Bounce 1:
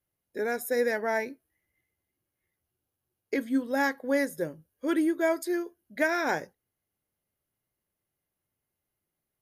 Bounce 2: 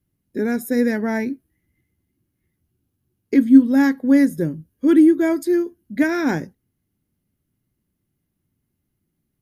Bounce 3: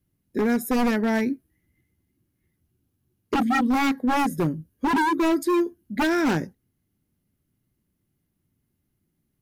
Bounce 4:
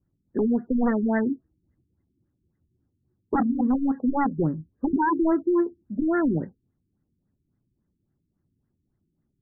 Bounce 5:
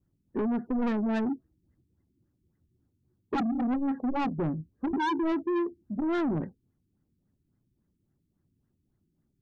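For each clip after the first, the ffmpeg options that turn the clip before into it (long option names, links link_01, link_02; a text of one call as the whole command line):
ffmpeg -i in.wav -af "lowshelf=frequency=380:width_type=q:width=1.5:gain=12.5,volume=3dB" out.wav
ffmpeg -i in.wav -af "aeval=exprs='0.158*(abs(mod(val(0)/0.158+3,4)-2)-1)':channel_layout=same" out.wav
ffmpeg -i in.wav -af "afftfilt=real='re*lt(b*sr/1024,390*pow(2100/390,0.5+0.5*sin(2*PI*3.6*pts/sr)))':imag='im*lt(b*sr/1024,390*pow(2100/390,0.5+0.5*sin(2*PI*3.6*pts/sr)))':win_size=1024:overlap=0.75" out.wav
ffmpeg -i in.wav -af "asoftclip=type=tanh:threshold=-25dB" out.wav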